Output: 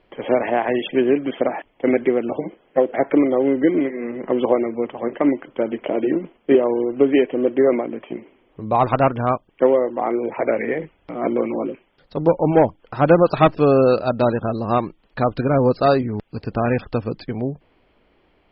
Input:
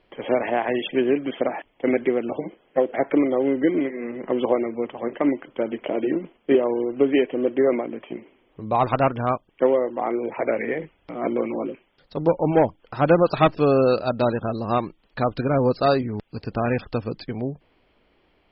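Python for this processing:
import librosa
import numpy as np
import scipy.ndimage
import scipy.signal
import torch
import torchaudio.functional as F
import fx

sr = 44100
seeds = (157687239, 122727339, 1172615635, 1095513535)

y = fx.high_shelf(x, sr, hz=3800.0, db=-7.5)
y = y * 10.0 ** (3.5 / 20.0)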